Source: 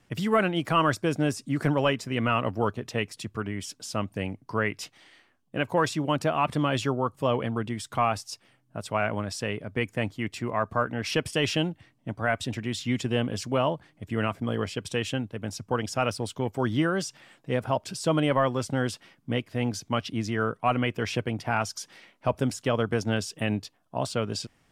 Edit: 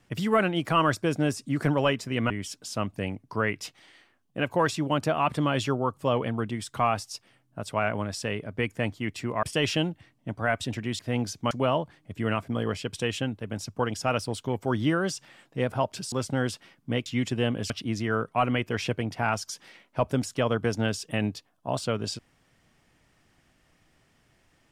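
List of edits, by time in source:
2.30–3.48 s: delete
10.61–11.23 s: delete
12.79–13.43 s: swap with 19.46–19.98 s
18.04–18.52 s: delete

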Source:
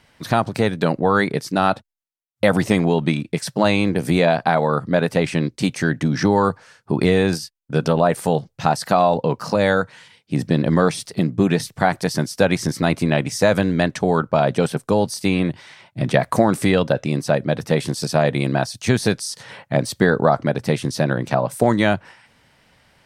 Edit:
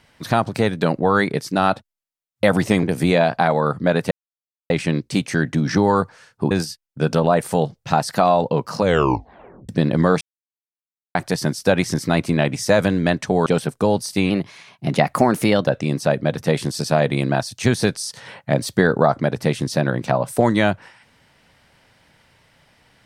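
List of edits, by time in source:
2.83–3.90 s: delete
5.18 s: insert silence 0.59 s
6.99–7.24 s: delete
9.54 s: tape stop 0.88 s
10.94–11.88 s: mute
14.19–14.54 s: delete
15.38–16.90 s: speed 111%

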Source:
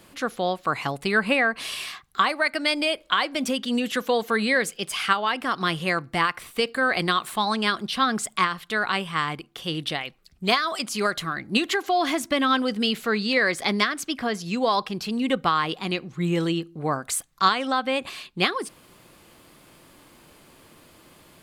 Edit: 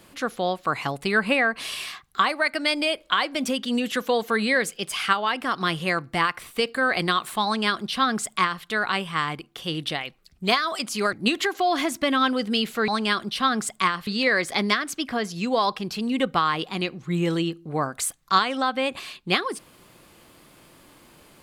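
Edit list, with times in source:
7.45–8.64 s: copy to 13.17 s
11.13–11.42 s: delete

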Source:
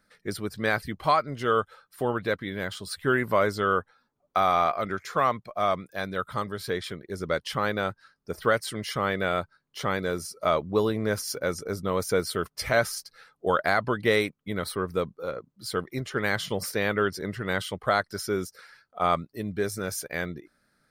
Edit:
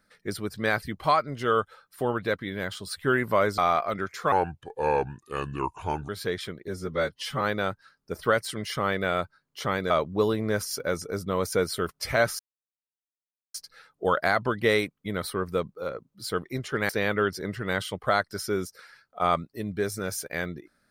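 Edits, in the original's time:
3.58–4.49 s: delete
5.23–6.52 s: speed 73%
7.11–7.60 s: stretch 1.5×
10.09–10.47 s: delete
12.96 s: insert silence 1.15 s
16.31–16.69 s: delete

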